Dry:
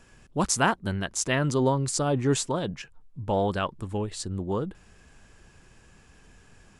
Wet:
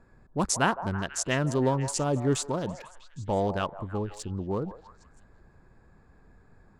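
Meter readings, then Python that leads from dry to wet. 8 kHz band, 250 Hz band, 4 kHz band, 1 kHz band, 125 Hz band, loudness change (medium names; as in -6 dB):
-2.5 dB, -1.5 dB, -3.0 dB, -1.5 dB, -1.5 dB, -2.0 dB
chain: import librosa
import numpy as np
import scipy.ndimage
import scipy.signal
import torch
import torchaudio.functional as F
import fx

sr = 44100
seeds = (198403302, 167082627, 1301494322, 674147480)

y = fx.wiener(x, sr, points=15)
y = fx.echo_stepped(y, sr, ms=162, hz=760.0, octaves=0.7, feedback_pct=70, wet_db=-9)
y = y * librosa.db_to_amplitude(-1.5)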